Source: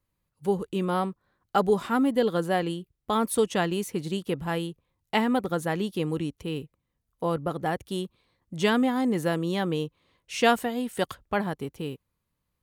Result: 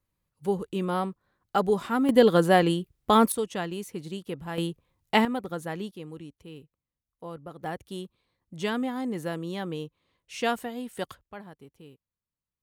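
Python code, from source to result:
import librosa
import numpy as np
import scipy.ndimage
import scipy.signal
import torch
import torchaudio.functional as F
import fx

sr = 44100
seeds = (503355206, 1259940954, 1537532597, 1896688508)

y = fx.gain(x, sr, db=fx.steps((0.0, -1.5), (2.09, 6.0), (3.32, -6.0), (4.58, 3.0), (5.25, -6.0), (5.91, -12.5), (7.64, -6.0), (11.21, -16.0)))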